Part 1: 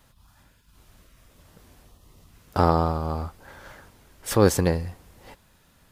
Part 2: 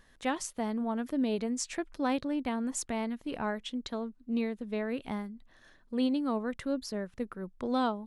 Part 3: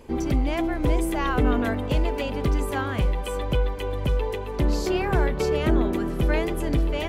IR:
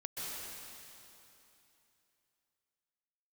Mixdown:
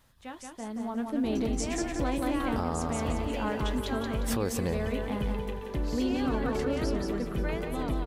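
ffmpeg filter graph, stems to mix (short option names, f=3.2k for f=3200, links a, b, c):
-filter_complex "[0:a]volume=-5.5dB,asplit=3[a][b][c];[b]volume=-19dB[d];[1:a]dynaudnorm=f=120:g=13:m=12dB,flanger=delay=8.1:depth=3.2:regen=-62:speed=0.31:shape=triangular,volume=-7.5dB,asplit=2[e][f];[f]volume=-4dB[g];[2:a]adelay=1150,volume=-9.5dB,asplit=2[h][i];[i]volume=-7dB[j];[c]apad=whole_len=363346[k];[h][k]sidechaincompress=threshold=-31dB:ratio=8:attack=46:release=213[l];[d][g][j]amix=inputs=3:normalize=0,aecho=0:1:177|354|531|708|885:1|0.39|0.152|0.0593|0.0231[m];[a][e][l][m]amix=inputs=4:normalize=0,alimiter=limit=-19.5dB:level=0:latency=1:release=119"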